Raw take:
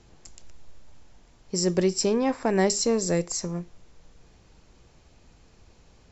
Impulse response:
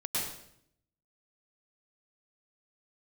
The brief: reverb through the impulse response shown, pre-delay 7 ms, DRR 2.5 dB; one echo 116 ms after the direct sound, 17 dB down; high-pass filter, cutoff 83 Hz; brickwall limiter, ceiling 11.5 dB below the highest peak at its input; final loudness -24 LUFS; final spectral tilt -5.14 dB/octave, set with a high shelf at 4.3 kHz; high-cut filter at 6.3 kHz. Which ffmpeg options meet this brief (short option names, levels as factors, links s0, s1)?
-filter_complex "[0:a]highpass=83,lowpass=6300,highshelf=f=4300:g=-6,alimiter=limit=0.0794:level=0:latency=1,aecho=1:1:116:0.141,asplit=2[s0][s1];[1:a]atrim=start_sample=2205,adelay=7[s2];[s1][s2]afir=irnorm=-1:irlink=0,volume=0.376[s3];[s0][s3]amix=inputs=2:normalize=0,volume=1.88"